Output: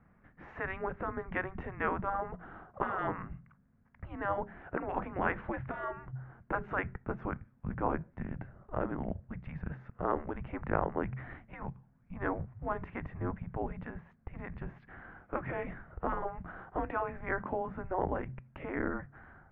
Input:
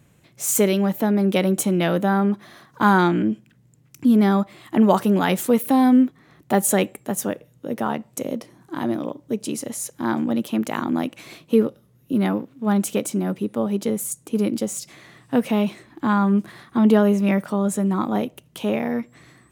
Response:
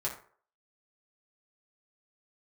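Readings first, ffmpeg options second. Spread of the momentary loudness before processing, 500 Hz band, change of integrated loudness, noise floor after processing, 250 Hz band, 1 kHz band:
12 LU, -14.5 dB, -16.0 dB, -66 dBFS, -22.0 dB, -11.0 dB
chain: -af "bandreject=f=83.65:t=h:w=4,bandreject=f=167.3:t=h:w=4,bandreject=f=250.95:t=h:w=4,highpass=f=210:t=q:w=0.5412,highpass=f=210:t=q:w=1.307,lowpass=f=2.2k:t=q:w=0.5176,lowpass=f=2.2k:t=q:w=0.7071,lowpass=f=2.2k:t=q:w=1.932,afreqshift=-380,afftfilt=real='re*lt(hypot(re,im),0.282)':imag='im*lt(hypot(re,im),0.282)':win_size=1024:overlap=0.75,volume=-1.5dB"

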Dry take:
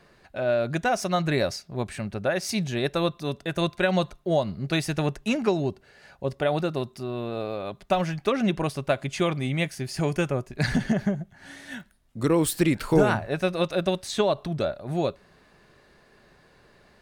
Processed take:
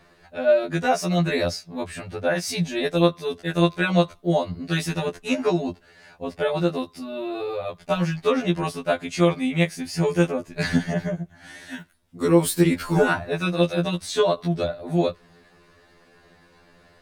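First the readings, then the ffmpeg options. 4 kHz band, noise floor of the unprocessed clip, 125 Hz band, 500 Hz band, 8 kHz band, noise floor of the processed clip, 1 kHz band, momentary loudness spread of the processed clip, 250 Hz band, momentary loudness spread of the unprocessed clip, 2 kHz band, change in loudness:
+2.5 dB, -59 dBFS, +2.5 dB, +3.0 dB, +2.0 dB, -56 dBFS, +1.5 dB, 12 LU, +3.0 dB, 9 LU, +3.0 dB, +3.0 dB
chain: -af "afftfilt=real='re*2*eq(mod(b,4),0)':imag='im*2*eq(mod(b,4),0)':win_size=2048:overlap=0.75,volume=4.5dB"

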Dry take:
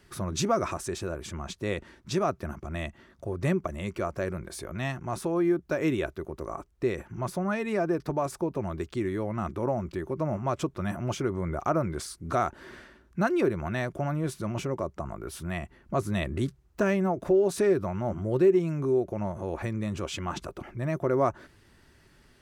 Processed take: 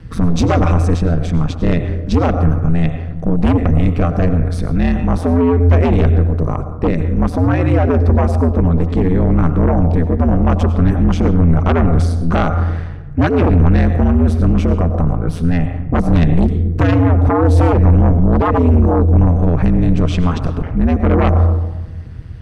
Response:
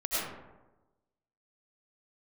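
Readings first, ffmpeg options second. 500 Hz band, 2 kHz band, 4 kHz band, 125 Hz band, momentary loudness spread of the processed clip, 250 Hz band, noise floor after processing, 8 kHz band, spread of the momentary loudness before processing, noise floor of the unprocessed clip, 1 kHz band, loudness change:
+8.5 dB, +9.0 dB, +7.0 dB, +21.0 dB, 7 LU, +15.5 dB, -25 dBFS, n/a, 11 LU, -60 dBFS, +11.5 dB, +15.0 dB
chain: -filter_complex "[0:a]bandreject=f=7k:w=12,aeval=exprs='0.237*(cos(1*acos(clip(val(0)/0.237,-1,1)))-cos(1*PI/2))+0.00266*(cos(6*acos(clip(val(0)/0.237,-1,1)))-cos(6*PI/2))':c=same,aemphasis=mode=reproduction:type=bsi,asplit=2[a][b];[1:a]atrim=start_sample=2205[c];[b][c]afir=irnorm=-1:irlink=0,volume=-16.5dB[d];[a][d]amix=inputs=2:normalize=0,aeval=exprs='0.422*sin(PI/2*2.82*val(0)/0.422)':c=same,lowshelf=f=76:g=7.5,aeval=exprs='val(0)*sin(2*PI*85*n/s)':c=same"

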